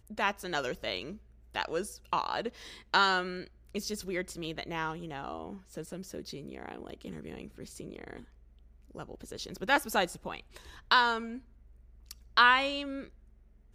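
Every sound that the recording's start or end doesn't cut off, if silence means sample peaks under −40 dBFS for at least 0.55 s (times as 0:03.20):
0:08.95–0:11.38
0:12.11–0:13.08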